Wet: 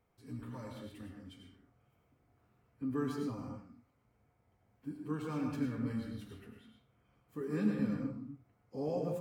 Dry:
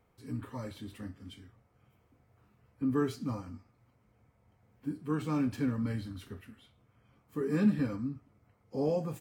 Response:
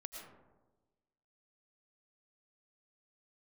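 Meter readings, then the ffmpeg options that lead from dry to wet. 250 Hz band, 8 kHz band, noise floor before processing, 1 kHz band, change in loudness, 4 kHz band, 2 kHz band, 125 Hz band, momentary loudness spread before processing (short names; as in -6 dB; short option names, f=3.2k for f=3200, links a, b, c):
-4.5 dB, n/a, -70 dBFS, -4.0 dB, -4.5 dB, -5.0 dB, -4.5 dB, -5.0 dB, 20 LU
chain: -filter_complex "[1:a]atrim=start_sample=2205,afade=t=out:st=0.33:d=0.01,atrim=end_sample=14994,asetrate=48510,aresample=44100[a];[0:a][a]afir=irnorm=-1:irlink=0"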